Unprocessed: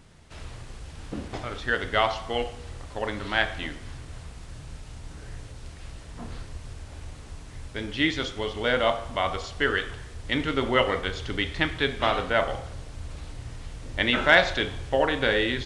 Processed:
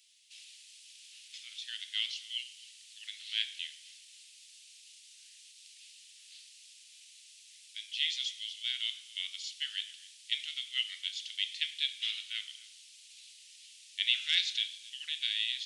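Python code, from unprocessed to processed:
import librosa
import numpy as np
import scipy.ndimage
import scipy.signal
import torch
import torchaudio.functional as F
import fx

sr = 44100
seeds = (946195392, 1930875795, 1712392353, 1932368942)

y = scipy.signal.sosfilt(scipy.signal.butter(6, 2700.0, 'highpass', fs=sr, output='sos'), x)
y = y + 10.0 ** (-21.0 / 20.0) * np.pad(y, (int(264 * sr / 1000.0), 0))[:len(y)]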